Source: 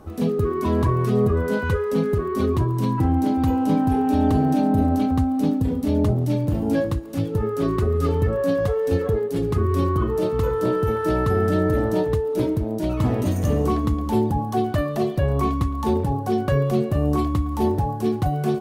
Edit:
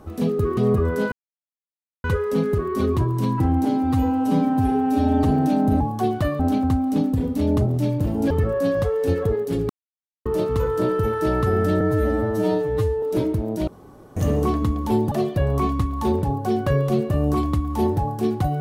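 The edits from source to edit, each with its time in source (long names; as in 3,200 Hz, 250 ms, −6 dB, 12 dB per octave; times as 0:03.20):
0:00.57–0:01.09: remove
0:01.64: splice in silence 0.92 s
0:03.25–0:04.32: time-stretch 1.5×
0:06.78–0:08.14: remove
0:09.53–0:10.09: silence
0:11.64–0:12.25: time-stretch 2×
0:12.90–0:13.39: fill with room tone
0:14.34–0:14.93: move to 0:04.87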